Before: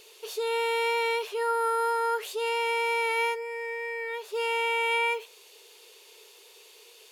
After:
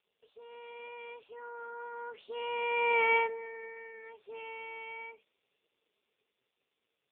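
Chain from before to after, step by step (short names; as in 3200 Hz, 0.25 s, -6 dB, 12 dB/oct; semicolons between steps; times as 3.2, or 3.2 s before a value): Doppler pass-by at 3.04, 9 m/s, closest 1.9 m; gain +1.5 dB; AMR-NB 5.15 kbps 8000 Hz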